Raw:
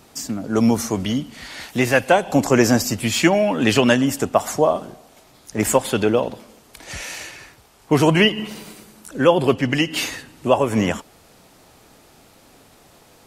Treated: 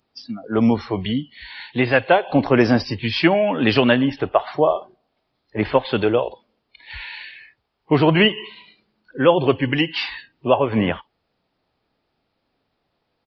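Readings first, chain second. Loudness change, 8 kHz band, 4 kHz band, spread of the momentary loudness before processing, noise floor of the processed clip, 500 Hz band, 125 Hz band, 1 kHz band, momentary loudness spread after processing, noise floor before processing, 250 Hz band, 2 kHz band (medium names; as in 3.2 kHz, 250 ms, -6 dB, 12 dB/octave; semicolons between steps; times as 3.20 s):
0.0 dB, under -25 dB, -0.5 dB, 15 LU, -73 dBFS, 0.0 dB, -0.5 dB, 0.0 dB, 17 LU, -52 dBFS, -0.5 dB, 0.0 dB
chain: resampled via 11.025 kHz; spectral noise reduction 21 dB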